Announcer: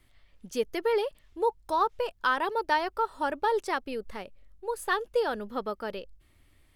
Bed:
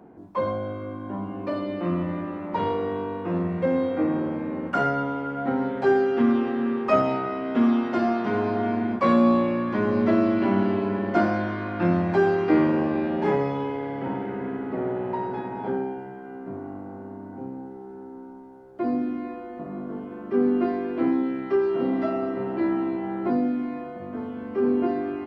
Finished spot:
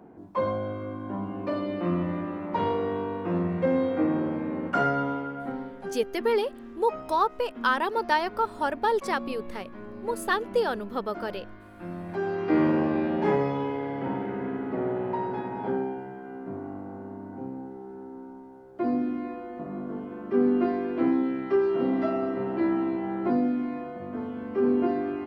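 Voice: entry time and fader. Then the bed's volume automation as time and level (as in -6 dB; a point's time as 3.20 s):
5.40 s, +2.0 dB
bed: 5.13 s -1 dB
6.01 s -18.5 dB
11.75 s -18.5 dB
12.67 s -1 dB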